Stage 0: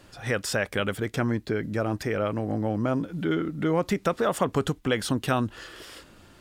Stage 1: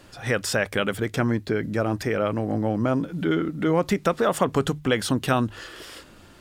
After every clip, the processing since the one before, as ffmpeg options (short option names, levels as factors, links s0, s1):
-af "bandreject=f=50:t=h:w=6,bandreject=f=100:t=h:w=6,bandreject=f=150:t=h:w=6,volume=1.41"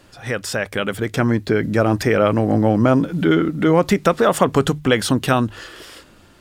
-af "dynaudnorm=f=260:g=9:m=3.76"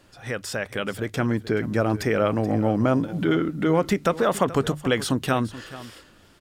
-af "aecho=1:1:429:0.15,volume=0.501"